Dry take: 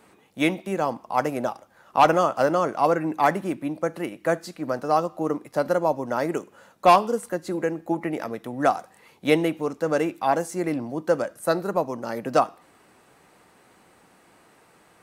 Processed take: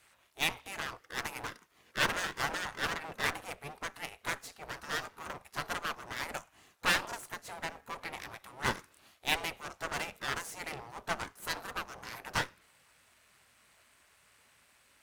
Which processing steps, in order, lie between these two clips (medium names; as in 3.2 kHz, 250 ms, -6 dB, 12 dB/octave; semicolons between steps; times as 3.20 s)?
partial rectifier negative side -12 dB; spectral gate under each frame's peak -15 dB weak; Chebyshev shaper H 8 -18 dB, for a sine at -14.5 dBFS